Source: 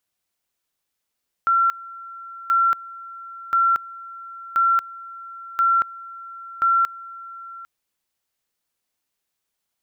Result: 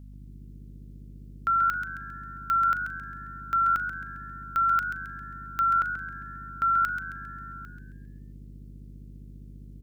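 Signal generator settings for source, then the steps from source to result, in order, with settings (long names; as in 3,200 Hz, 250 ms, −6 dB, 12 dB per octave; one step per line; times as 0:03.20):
tone at two levels in turn 1,360 Hz −14.5 dBFS, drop 20 dB, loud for 0.23 s, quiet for 0.80 s, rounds 6
parametric band 760 Hz −9 dB 2 octaves
mains hum 50 Hz, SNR 14 dB
on a send: echo with shifted repeats 134 ms, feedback 42%, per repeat +85 Hz, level −9 dB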